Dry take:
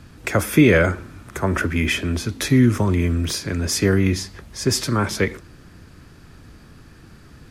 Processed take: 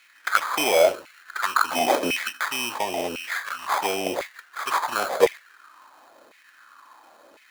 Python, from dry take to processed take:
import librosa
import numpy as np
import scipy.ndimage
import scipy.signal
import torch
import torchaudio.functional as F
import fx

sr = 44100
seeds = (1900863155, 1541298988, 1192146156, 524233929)

y = fx.graphic_eq(x, sr, hz=(125, 250, 500, 1000, 2000, 8000), db=(5, 9, -5, 10, 5, 6), at=(1.67, 2.36), fade=0.02)
y = fx.env_flanger(y, sr, rest_ms=3.8, full_db=-13.0)
y = fx.sample_hold(y, sr, seeds[0], rate_hz=2800.0, jitter_pct=0)
y = fx.filter_lfo_highpass(y, sr, shape='saw_down', hz=0.95, low_hz=490.0, high_hz=2300.0, q=4.3)